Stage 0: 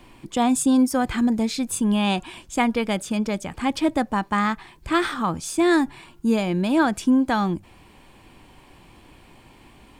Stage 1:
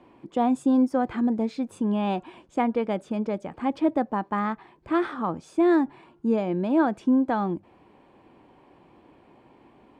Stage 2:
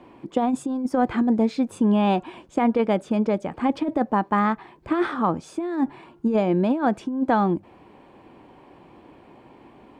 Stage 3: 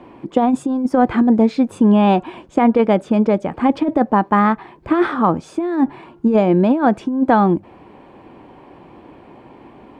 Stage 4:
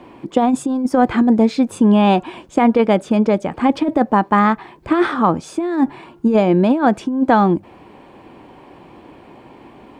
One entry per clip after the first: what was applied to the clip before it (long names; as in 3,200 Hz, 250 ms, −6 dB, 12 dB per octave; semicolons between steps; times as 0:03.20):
resonant band-pass 470 Hz, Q 0.75
compressor whose output falls as the input rises −23 dBFS, ratio −0.5; level +4 dB
high-shelf EQ 3,900 Hz −7 dB; level +7 dB
high-shelf EQ 3,400 Hz +9 dB